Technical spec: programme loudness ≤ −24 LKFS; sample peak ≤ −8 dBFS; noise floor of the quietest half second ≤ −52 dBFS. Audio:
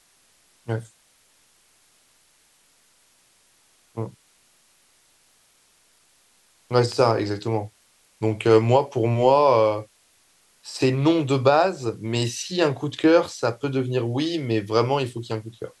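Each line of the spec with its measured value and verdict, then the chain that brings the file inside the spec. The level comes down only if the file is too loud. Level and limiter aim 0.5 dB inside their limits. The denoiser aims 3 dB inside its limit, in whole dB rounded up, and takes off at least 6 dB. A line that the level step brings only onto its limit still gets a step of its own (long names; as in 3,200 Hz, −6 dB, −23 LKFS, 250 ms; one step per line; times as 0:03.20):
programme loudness −22.0 LKFS: out of spec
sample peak −5.5 dBFS: out of spec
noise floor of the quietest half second −61 dBFS: in spec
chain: level −2.5 dB
brickwall limiter −8.5 dBFS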